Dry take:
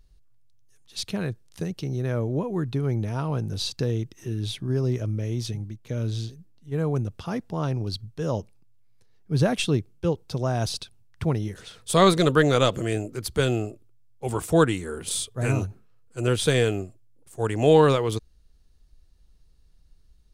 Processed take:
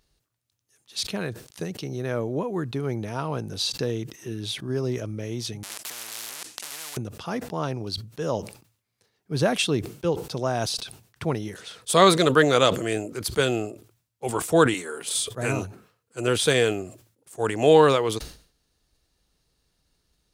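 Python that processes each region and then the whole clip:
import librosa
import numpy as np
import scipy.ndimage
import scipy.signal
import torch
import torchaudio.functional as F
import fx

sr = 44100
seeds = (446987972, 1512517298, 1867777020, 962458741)

y = fx.chain(x, sr, fx.zero_step(step_db=-37.0),
    fx.weighting(curve='ITU-R 468'),
    fx.spectral_comp(ratio=10.0), at=(5.63, 6.97))
y = fx.chain(y, sr, fx.highpass(hz=450.0, slope=6),
    fx.comb(ms=7.1, depth=0.35),
    fx.band_squash(depth_pct=40), at=(14.74, 15.15))
y = fx.highpass(y, sr, hz=340.0, slope=6)
y = fx.sustainer(y, sr, db_per_s=120.0)
y = F.gain(torch.from_numpy(y), 3.0).numpy()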